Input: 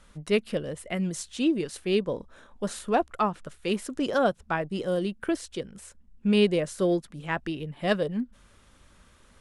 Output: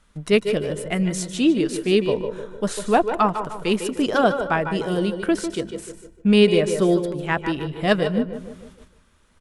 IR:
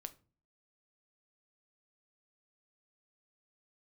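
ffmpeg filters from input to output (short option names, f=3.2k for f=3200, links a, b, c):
-filter_complex "[0:a]bandreject=f=540:w=12,asplit=2[a][b];[b]adelay=151,lowpass=f=1.7k:p=1,volume=-8.5dB,asplit=2[c][d];[d]adelay=151,lowpass=f=1.7k:p=1,volume=0.52,asplit=2[e][f];[f]adelay=151,lowpass=f=1.7k:p=1,volume=0.52,asplit=2[g][h];[h]adelay=151,lowpass=f=1.7k:p=1,volume=0.52,asplit=2[i][j];[j]adelay=151,lowpass=f=1.7k:p=1,volume=0.52,asplit=2[k][l];[l]adelay=151,lowpass=f=1.7k:p=1,volume=0.52[m];[a][c][e][g][i][k][m]amix=inputs=7:normalize=0,agate=range=-10dB:threshold=-50dB:ratio=16:detection=peak,asplit=2[n][o];[1:a]atrim=start_sample=2205,adelay=149[p];[o][p]afir=irnorm=-1:irlink=0,volume=-7dB[q];[n][q]amix=inputs=2:normalize=0,volume=6.5dB"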